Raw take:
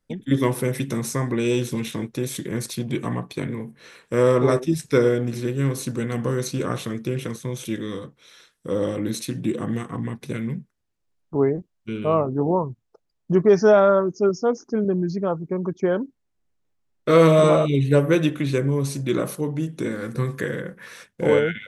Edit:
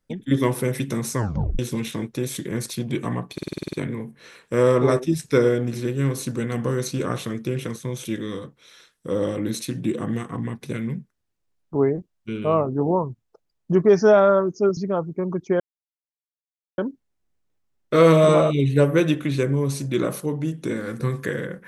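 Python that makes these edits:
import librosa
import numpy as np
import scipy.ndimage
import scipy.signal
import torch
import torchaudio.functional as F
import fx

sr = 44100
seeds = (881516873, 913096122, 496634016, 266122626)

y = fx.edit(x, sr, fx.tape_stop(start_s=1.16, length_s=0.43),
    fx.stutter(start_s=3.33, slice_s=0.05, count=9),
    fx.cut(start_s=14.37, length_s=0.73),
    fx.insert_silence(at_s=15.93, length_s=1.18), tone=tone)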